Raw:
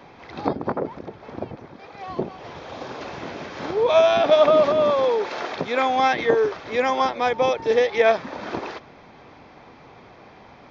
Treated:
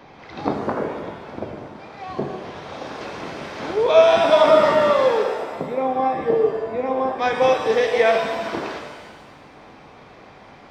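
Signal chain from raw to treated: 5.23–7.19 running mean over 29 samples; shimmer reverb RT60 1.3 s, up +7 st, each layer -8 dB, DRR 2.5 dB

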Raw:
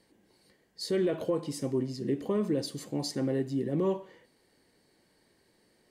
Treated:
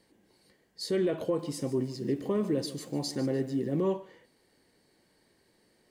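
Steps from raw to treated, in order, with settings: 1.24–3.81 lo-fi delay 0.148 s, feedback 35%, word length 9-bit, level -14 dB

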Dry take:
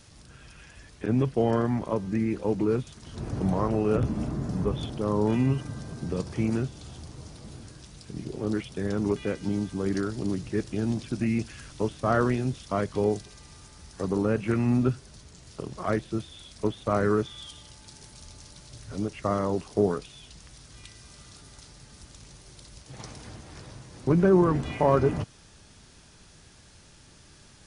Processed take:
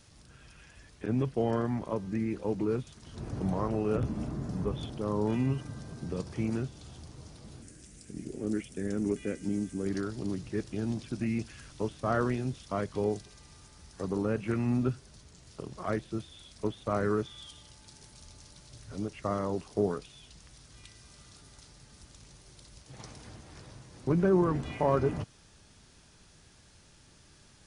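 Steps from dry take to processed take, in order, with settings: 7.62–9.87 graphic EQ 125/250/1000/2000/4000/8000 Hz -5/+5/-10/+4/-9/+9 dB; gain -5 dB

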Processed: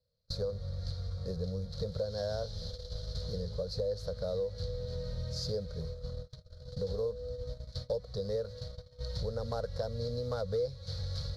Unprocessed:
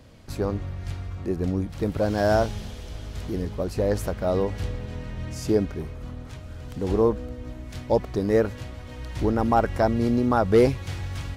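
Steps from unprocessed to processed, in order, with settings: CVSD 64 kbps; gate -35 dBFS, range -32 dB; EQ curve 170 Hz 0 dB, 330 Hz -29 dB, 490 Hz +9 dB, 800 Hz -13 dB, 1400 Hz -6 dB, 2700 Hz -20 dB, 4200 Hz +14 dB, 8000 Hz -12 dB; compressor 4:1, threshold -34 dBFS, peak gain reduction 19.5 dB

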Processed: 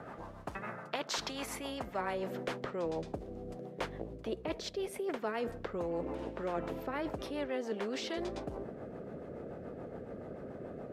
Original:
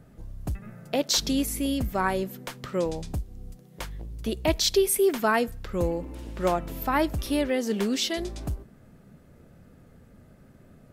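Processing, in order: block floating point 7-bit; rotary speaker horn 7 Hz; reverse; compressor 5:1, threshold -38 dBFS, peak gain reduction 18.5 dB; reverse; band-pass sweep 980 Hz -> 470 Hz, 1.49–2.44; spectral compressor 2:1; gain +13 dB

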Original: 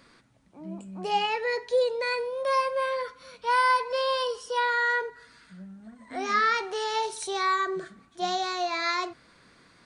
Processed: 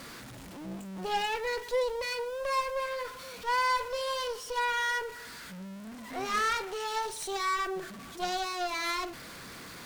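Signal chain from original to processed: zero-crossing step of -34 dBFS; added harmonics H 6 -15 dB, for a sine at -13 dBFS; gain -6.5 dB

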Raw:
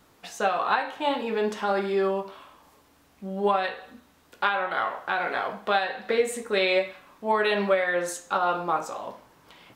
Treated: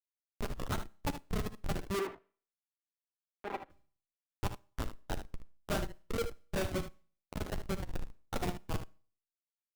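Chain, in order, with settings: moving spectral ripple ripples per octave 0.83, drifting +1.2 Hz, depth 12 dB; dynamic EQ 270 Hz, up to +4 dB, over -37 dBFS, Q 0.73; flange 1.9 Hz, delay 7.7 ms, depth 3 ms, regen -84%; Schmitt trigger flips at -20 dBFS; Schroeder reverb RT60 0.45 s, combs from 28 ms, DRR 16.5 dB; limiter -31 dBFS, peak gain reduction 8.5 dB; reverb removal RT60 1.1 s; 1.99–3.7 three-band isolator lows -24 dB, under 290 Hz, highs -21 dB, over 2800 Hz; early reflections 11 ms -11.5 dB, 59 ms -16 dB, 76 ms -11 dB; gain +2 dB

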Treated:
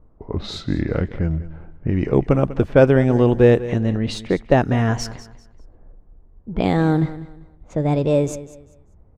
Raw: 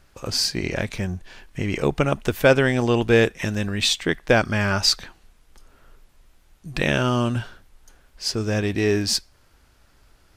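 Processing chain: speed glide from 78% -> 148%; low-pass opened by the level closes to 810 Hz, open at -16.5 dBFS; tilt shelf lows +9.5 dB, about 1400 Hz; on a send: feedback echo 0.196 s, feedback 27%, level -15.5 dB; on the sum: gain -3.5 dB

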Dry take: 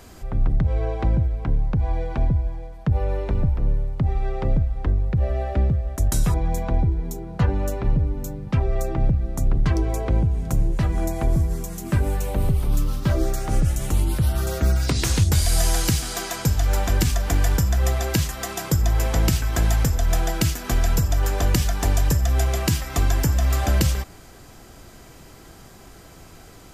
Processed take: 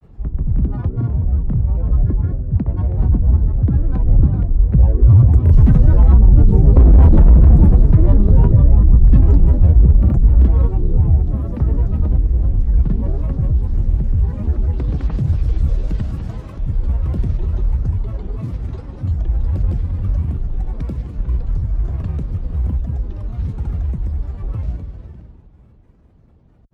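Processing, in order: Doppler pass-by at 6.96, 32 m/s, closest 7 m; high shelf 4800 Hz -7 dB; on a send: tape echo 0.272 s, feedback 44%, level -8.5 dB, low-pass 3300 Hz; on the sum: Schroeder reverb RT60 1.9 s, combs from 32 ms, DRR 4 dB; in parallel at +1.5 dB: compressor, threshold -50 dBFS, peak gain reduction 30.5 dB; on the sum: grains, grains 20/s, pitch spread up and down by 12 st; soft clip -23 dBFS, distortion -9 dB; HPF 46 Hz 12 dB/oct; tilt -4.5 dB/oct; maximiser +15 dB; gain -1 dB

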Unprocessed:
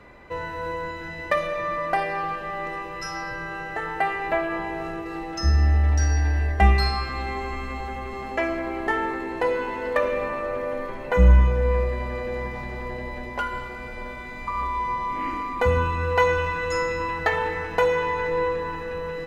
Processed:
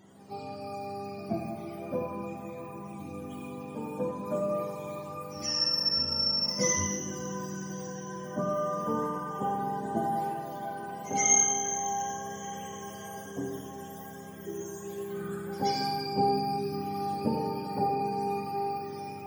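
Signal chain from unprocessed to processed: spectrum mirrored in octaves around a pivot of 630 Hz; reverse echo 0.127 s -18.5 dB; Schroeder reverb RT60 0.92 s, combs from 31 ms, DRR 2.5 dB; gain -7.5 dB

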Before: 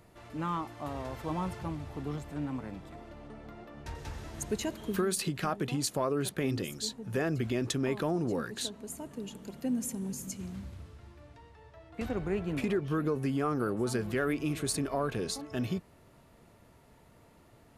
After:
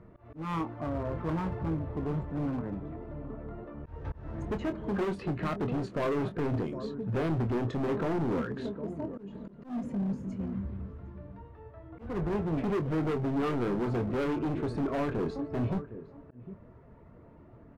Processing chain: bin magnitudes rounded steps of 15 dB; LPF 1100 Hz 12 dB/oct; bell 790 Hz -6.5 dB 0.34 oct; outdoor echo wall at 130 m, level -16 dB; hard clip -34.5 dBFS, distortion -7 dB; doubler 25 ms -9 dB; auto swell 0.21 s; gain +6.5 dB

